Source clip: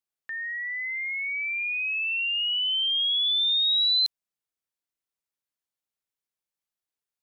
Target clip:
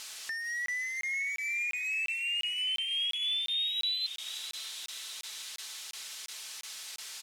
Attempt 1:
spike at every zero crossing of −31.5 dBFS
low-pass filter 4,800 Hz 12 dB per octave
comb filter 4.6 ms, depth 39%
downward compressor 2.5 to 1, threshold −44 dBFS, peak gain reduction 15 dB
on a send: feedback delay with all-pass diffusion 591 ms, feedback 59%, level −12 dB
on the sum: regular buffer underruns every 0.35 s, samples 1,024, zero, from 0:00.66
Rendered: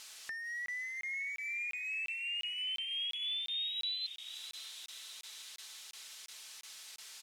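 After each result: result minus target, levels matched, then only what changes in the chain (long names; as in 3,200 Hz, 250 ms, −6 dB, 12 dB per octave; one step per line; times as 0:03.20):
downward compressor: peak gain reduction +5 dB; spike at every zero crossing: distortion −7 dB
change: downward compressor 2.5 to 1, threshold −35 dBFS, peak gain reduction 10 dB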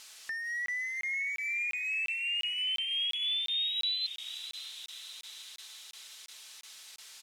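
spike at every zero crossing: distortion −7 dB
change: spike at every zero crossing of −24 dBFS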